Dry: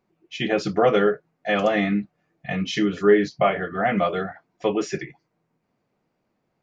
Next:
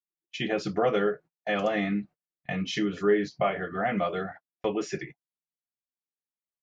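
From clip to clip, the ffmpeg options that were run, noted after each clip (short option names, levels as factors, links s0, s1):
-filter_complex "[0:a]agate=range=0.0158:threshold=0.0126:ratio=16:detection=peak,asplit=2[s0][s1];[s1]acompressor=threshold=0.0447:ratio=6,volume=0.891[s2];[s0][s2]amix=inputs=2:normalize=0,volume=0.376"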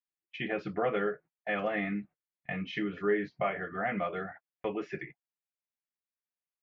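-af "lowpass=f=2200:t=q:w=1.6,volume=0.501"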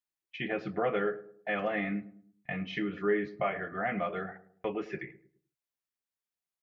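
-filter_complex "[0:a]asplit=2[s0][s1];[s1]adelay=106,lowpass=f=930:p=1,volume=0.188,asplit=2[s2][s3];[s3]adelay=106,lowpass=f=930:p=1,volume=0.43,asplit=2[s4][s5];[s5]adelay=106,lowpass=f=930:p=1,volume=0.43,asplit=2[s6][s7];[s7]adelay=106,lowpass=f=930:p=1,volume=0.43[s8];[s0][s2][s4][s6][s8]amix=inputs=5:normalize=0"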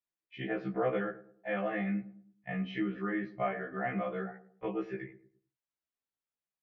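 -af "aemphasis=mode=reproduction:type=75fm,afftfilt=real='re*1.73*eq(mod(b,3),0)':imag='im*1.73*eq(mod(b,3),0)':win_size=2048:overlap=0.75"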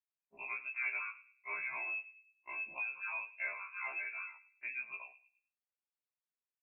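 -af "lowpass=f=2400:t=q:w=0.5098,lowpass=f=2400:t=q:w=0.6013,lowpass=f=2400:t=q:w=0.9,lowpass=f=2400:t=q:w=2.563,afreqshift=-2800,volume=0.447"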